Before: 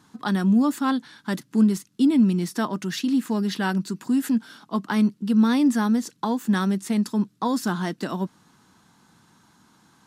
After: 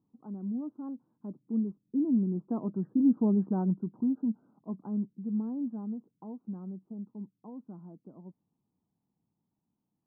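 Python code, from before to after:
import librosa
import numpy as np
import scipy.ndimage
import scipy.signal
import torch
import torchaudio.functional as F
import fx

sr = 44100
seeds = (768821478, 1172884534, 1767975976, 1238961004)

y = fx.doppler_pass(x, sr, speed_mps=10, closest_m=4.9, pass_at_s=3.22)
y = scipy.ndimage.gaussian_filter1d(y, 12.0, mode='constant')
y = fx.spec_topn(y, sr, count=64)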